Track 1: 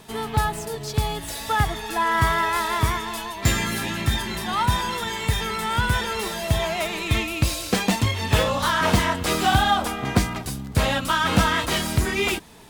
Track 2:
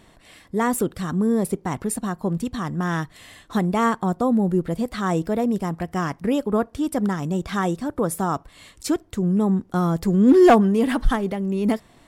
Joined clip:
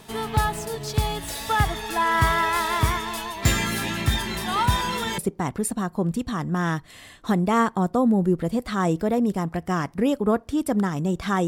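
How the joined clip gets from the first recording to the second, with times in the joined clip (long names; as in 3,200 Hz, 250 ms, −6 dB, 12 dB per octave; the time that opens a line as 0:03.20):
track 1
0:04.47: mix in track 2 from 0:00.73 0.71 s −16.5 dB
0:05.18: continue with track 2 from 0:01.44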